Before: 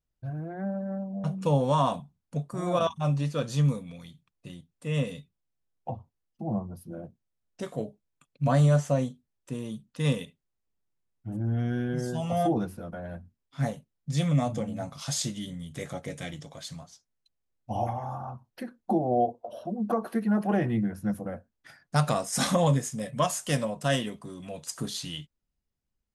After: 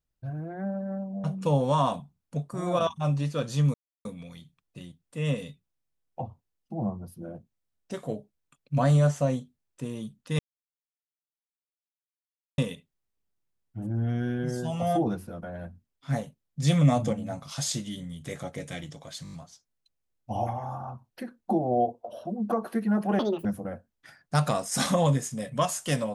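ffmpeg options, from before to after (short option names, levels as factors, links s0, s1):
-filter_complex "[0:a]asplit=12[s0][s1][s2][s3][s4][s5][s6][s7][s8][s9][s10][s11];[s0]atrim=end=3.74,asetpts=PTS-STARTPTS,afade=t=out:st=3.736:d=0.004:c=hsin,apad=pad_dur=0.31[s12];[s1]atrim=start=3.74:end=10.08,asetpts=PTS-STARTPTS,afade=t=in:d=0.004:c=hsin,afade=t=out:st=6.336:d=0.004:c=hsin,apad=pad_dur=2.19[s13];[s2]atrim=start=10.08:end=14.122,asetpts=PTS-STARTPTS,afade=t=in:d=0.004:c=hsin[s14];[s3]atrim=start=14.118:end=14.632,asetpts=PTS-STARTPTS,volume=1.58[s15];[s4]atrim=start=14.628:end=16.752[s16];[s5]atrim=start=16.728:end=16.752[s17];[s6]atrim=start=16.728:end=16.752[s18];[s7]atrim=start=16.728:end=16.752[s19];[s8]atrim=start=16.728:end=16.752[s20];[s9]atrim=start=16.728:end=20.594[s21];[s10]atrim=start=20.59:end=21.06,asetpts=PTS-STARTPTS,asetrate=79380,aresample=44100[s22];[s11]atrim=start=21.056[s23];[s12][s13][s14]concat=n=3:v=0:a=1[s24];[s24][s15]acrossfade=d=0.004:c1=hsin:c2=hsin[s25];[s25][s16]acrossfade=d=0.004:c1=hsin:c2=hsin[s26];[s26][s17]acrossfade=d=0.004:c1=hsin:c2=hsin[s27];[s27][s18]acrossfade=d=0.004:c1=hsin:c2=hsin[s28];[s28][s19]acrossfade=d=0.004:c1=hsin:c2=hsin[s29];[s29][s20]acrossfade=d=0.004:c1=hsin:c2=hsin[s30];[s30][s21]acrossfade=d=0.004:c1=hsin:c2=hsin[s31];[s31][s22]acrossfade=d=0.004:c1=hsin:c2=hsin[s32];[s32][s23]acrossfade=d=0.004:c1=hsin:c2=hsin"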